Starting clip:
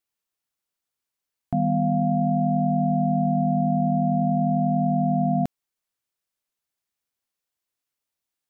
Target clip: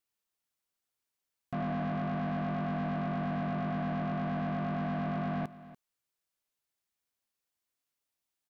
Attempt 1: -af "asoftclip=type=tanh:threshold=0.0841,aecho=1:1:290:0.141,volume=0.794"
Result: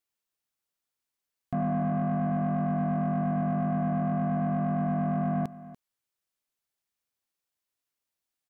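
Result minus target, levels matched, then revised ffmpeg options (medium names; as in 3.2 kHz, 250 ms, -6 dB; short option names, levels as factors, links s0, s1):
saturation: distortion -5 dB
-af "asoftclip=type=tanh:threshold=0.0335,aecho=1:1:290:0.141,volume=0.794"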